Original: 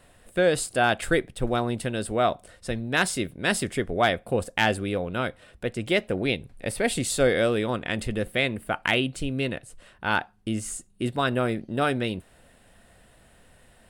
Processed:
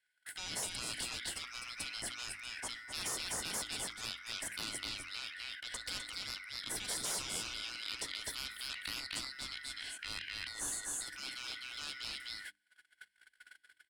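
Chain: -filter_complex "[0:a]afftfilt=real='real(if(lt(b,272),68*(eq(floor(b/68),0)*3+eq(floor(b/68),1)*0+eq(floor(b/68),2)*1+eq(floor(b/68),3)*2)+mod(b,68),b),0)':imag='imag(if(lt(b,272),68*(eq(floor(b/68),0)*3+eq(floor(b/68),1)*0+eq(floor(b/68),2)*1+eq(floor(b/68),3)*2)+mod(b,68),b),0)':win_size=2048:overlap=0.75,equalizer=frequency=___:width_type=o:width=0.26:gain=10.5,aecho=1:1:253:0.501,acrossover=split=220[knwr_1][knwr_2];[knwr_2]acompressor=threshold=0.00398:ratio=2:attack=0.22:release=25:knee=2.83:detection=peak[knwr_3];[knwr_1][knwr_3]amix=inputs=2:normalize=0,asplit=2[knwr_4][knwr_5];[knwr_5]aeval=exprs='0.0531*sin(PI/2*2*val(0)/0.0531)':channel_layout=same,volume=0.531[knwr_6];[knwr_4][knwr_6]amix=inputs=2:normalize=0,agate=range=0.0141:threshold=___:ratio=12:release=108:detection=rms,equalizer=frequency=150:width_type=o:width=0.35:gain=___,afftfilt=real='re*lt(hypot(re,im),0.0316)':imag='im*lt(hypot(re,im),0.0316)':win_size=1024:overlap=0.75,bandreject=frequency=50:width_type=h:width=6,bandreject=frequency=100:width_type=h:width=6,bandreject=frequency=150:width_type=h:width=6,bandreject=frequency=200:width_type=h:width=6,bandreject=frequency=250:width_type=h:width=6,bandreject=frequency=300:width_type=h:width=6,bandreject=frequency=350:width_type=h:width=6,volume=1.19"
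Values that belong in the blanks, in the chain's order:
300, 0.00794, -12.5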